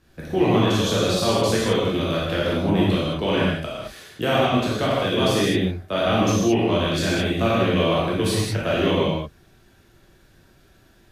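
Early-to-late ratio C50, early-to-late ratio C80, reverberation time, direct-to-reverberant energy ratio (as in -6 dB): -2.0 dB, 0.5 dB, not exponential, -7.5 dB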